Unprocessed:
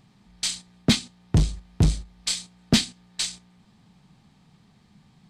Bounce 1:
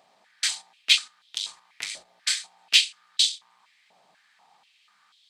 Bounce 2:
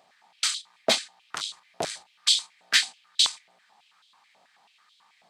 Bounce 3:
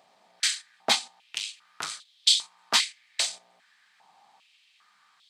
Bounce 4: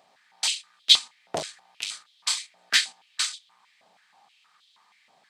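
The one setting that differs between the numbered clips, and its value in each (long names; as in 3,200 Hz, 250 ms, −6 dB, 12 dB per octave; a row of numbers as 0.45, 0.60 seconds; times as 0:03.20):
high-pass on a step sequencer, speed: 4.1, 9.2, 2.5, 6.3 Hertz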